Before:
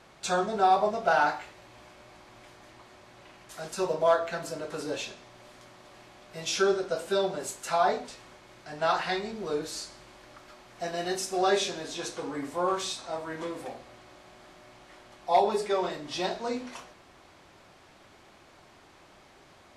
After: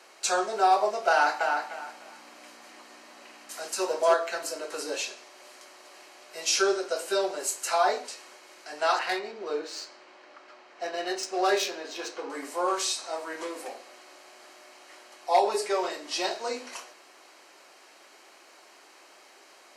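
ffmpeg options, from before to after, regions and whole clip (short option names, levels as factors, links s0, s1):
-filter_complex "[0:a]asettb=1/sr,asplit=3[s0][s1][s2];[s0]atrim=end=1.104[s3];[s1]atrim=start=1.1:end=4.14,asetpts=PTS-STARTPTS,afade=t=in:d=0.004:c=qsin,afade=t=out:st=3.036:d=0.004:c=qsin,aeval=exprs='val(0)+0.00562*(sin(2*PI*60*n/s)+sin(2*PI*2*60*n/s)/2+sin(2*PI*3*60*n/s)/3+sin(2*PI*4*60*n/s)/4+sin(2*PI*5*60*n/s)/5)':c=same,asplit=2[s4][s5];[s5]adelay=304,lowpass=f=3400:p=1,volume=0.631,asplit=2[s6][s7];[s7]adelay=304,lowpass=f=3400:p=1,volume=0.25,asplit=2[s8][s9];[s9]adelay=304,lowpass=f=3400:p=1,volume=0.25[s10];[s4][s6][s8][s10]amix=inputs=4:normalize=0,atrim=end_sample=134064[s11];[s2]atrim=start=4.136[s12];[s3][s11]acrossfade=d=0.004:c1=hsin:c2=qsin[s13];[s13][s12]acrossfade=d=0.004:c1=qsin:c2=hsin,asettb=1/sr,asplit=3[s14][s15][s16];[s14]atrim=end=8.994[s17];[s15]atrim=start=8.99:end=12.3,asetpts=PTS-STARTPTS,afade=t=in:d=0.004:c=qsin,afade=t=out:st=3.306:d=0.004:c=qsin,lowpass=9300,adynamicsmooth=sensitivity=3.5:basefreq=3500[s18];[s16]atrim=start=12.296[s19];[s17][s18]acrossfade=d=0.004:c1=hsin:c2=qsin[s20];[s20][s19]acrossfade=d=0.004:c1=qsin:c2=hsin,highpass=f=320:w=0.5412,highpass=f=320:w=1.3066,highshelf=f=2500:g=8.5,bandreject=f=3500:w=7.4"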